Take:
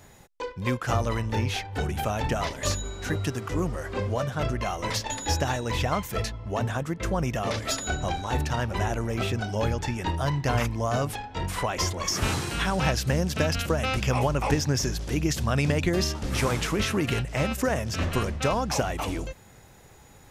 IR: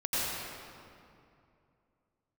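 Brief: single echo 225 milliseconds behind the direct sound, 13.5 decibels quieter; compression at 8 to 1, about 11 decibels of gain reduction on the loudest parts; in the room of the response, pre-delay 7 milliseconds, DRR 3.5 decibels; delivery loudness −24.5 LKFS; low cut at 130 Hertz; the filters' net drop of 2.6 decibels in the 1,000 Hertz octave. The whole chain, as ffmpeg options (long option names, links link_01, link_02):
-filter_complex "[0:a]highpass=130,equalizer=frequency=1000:width_type=o:gain=-3.5,acompressor=threshold=-33dB:ratio=8,aecho=1:1:225:0.211,asplit=2[link_01][link_02];[1:a]atrim=start_sample=2205,adelay=7[link_03];[link_02][link_03]afir=irnorm=-1:irlink=0,volume=-13dB[link_04];[link_01][link_04]amix=inputs=2:normalize=0,volume=11dB"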